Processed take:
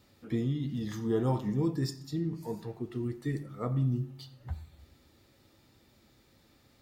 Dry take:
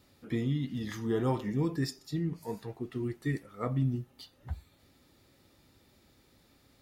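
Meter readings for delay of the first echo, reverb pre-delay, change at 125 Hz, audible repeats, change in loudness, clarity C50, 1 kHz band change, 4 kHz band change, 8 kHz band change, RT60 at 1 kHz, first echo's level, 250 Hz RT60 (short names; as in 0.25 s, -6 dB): none, 9 ms, +1.0 dB, none, +0.5 dB, 14.5 dB, -1.0 dB, -1.5 dB, -0.5 dB, 0.70 s, none, 0.90 s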